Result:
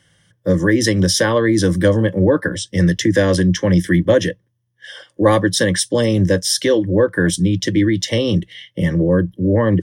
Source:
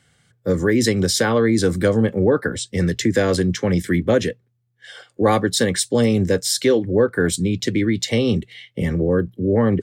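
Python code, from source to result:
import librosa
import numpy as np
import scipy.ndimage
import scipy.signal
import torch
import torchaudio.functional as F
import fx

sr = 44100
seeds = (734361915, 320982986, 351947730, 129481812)

y = fx.ripple_eq(x, sr, per_octave=1.2, db=10)
y = y * 10.0 ** (1.5 / 20.0)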